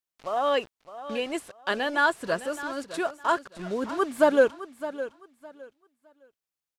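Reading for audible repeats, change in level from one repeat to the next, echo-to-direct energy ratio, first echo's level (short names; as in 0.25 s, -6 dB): 2, -13.0 dB, -13.5 dB, -13.5 dB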